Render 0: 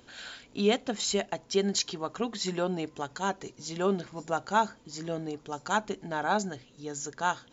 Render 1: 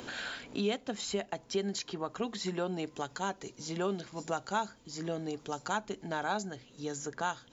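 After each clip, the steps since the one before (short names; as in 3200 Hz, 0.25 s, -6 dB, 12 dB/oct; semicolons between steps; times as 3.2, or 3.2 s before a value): three-band squash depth 70%; gain -5 dB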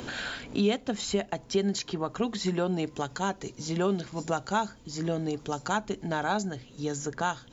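low shelf 180 Hz +9 dB; gain +4 dB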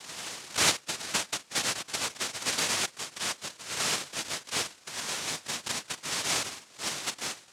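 noise vocoder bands 1; tremolo saw up 1.4 Hz, depth 55%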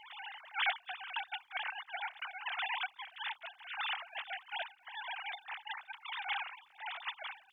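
sine-wave speech; crackle 420/s -61 dBFS; gain -8.5 dB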